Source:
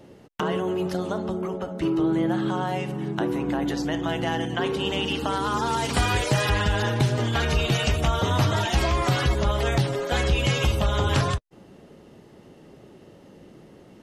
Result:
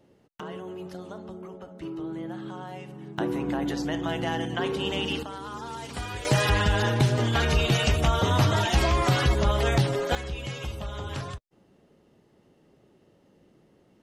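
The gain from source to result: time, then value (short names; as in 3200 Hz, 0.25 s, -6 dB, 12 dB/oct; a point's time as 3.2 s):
-12 dB
from 3.18 s -2.5 dB
from 5.23 s -12 dB
from 6.25 s 0 dB
from 10.15 s -12 dB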